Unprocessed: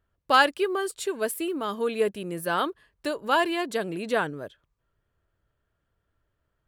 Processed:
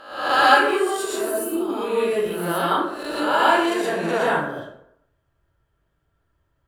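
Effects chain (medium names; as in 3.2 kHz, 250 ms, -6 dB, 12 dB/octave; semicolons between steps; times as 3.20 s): reverse spectral sustain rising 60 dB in 0.74 s; 1.17–1.70 s: peaking EQ 2.3 kHz -13 dB 1.8 oct; plate-style reverb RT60 0.73 s, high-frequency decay 0.55×, pre-delay 105 ms, DRR -7.5 dB; trim -5 dB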